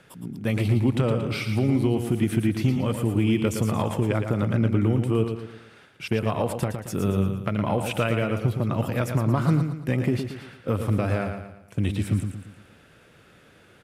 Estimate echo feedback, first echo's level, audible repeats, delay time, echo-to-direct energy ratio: 42%, -7.0 dB, 4, 114 ms, -6.0 dB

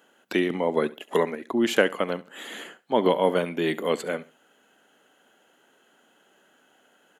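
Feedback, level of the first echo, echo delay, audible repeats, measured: 28%, -19.0 dB, 69 ms, 2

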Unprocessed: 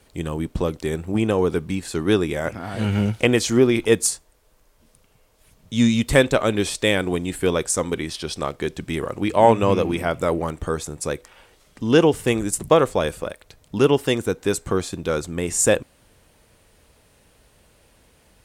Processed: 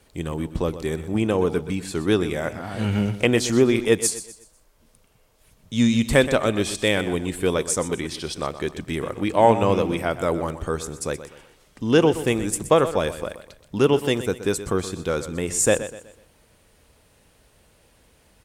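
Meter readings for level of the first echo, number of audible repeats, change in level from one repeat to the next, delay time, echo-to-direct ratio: -13.0 dB, 3, -8.5 dB, 124 ms, -12.5 dB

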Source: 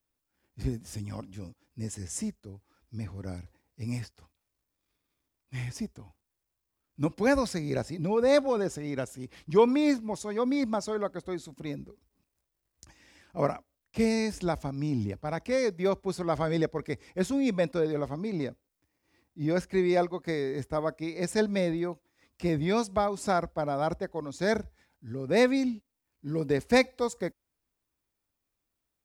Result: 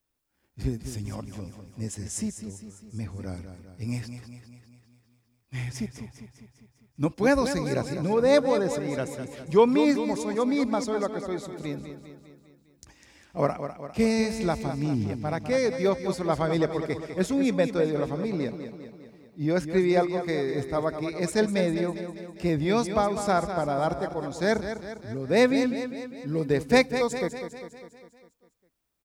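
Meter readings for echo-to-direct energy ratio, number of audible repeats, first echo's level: -8.0 dB, 6, -9.5 dB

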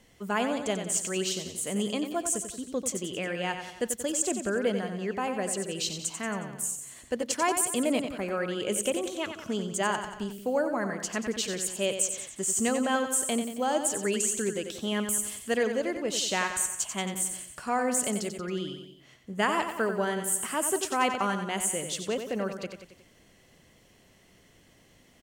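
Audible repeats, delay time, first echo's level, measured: 4, 91 ms, -8.0 dB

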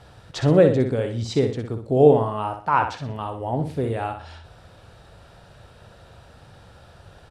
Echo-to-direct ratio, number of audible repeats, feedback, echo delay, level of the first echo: -7.0 dB, 3, 34%, 61 ms, -7.5 dB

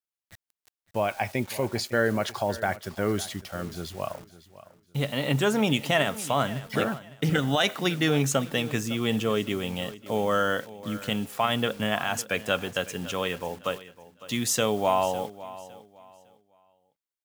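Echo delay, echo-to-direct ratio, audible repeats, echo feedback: 556 ms, -16.5 dB, 2, 27%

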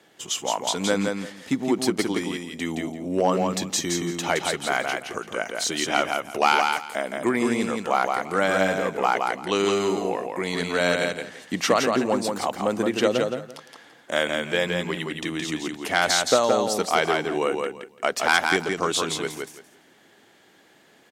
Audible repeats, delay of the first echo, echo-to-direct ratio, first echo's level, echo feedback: 3, 169 ms, -4.0 dB, -4.0 dB, 20%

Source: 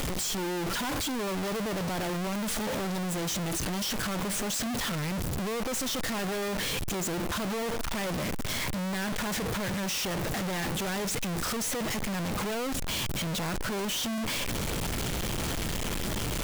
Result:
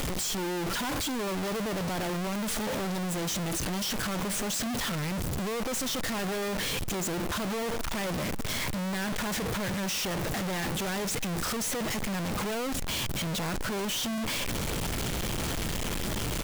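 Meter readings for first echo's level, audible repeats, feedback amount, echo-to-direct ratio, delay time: -22.5 dB, 1, no regular repeats, -22.5 dB, 866 ms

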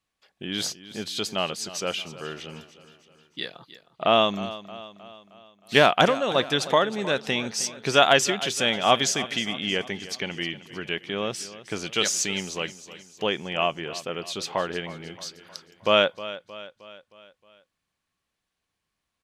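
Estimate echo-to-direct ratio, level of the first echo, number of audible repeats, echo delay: -14.0 dB, -15.5 dB, 4, 312 ms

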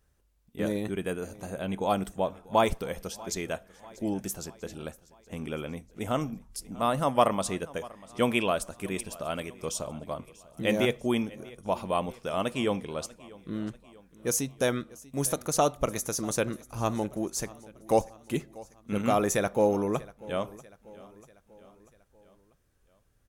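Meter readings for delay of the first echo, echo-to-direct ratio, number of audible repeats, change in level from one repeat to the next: 641 ms, -19.5 dB, 3, -5.5 dB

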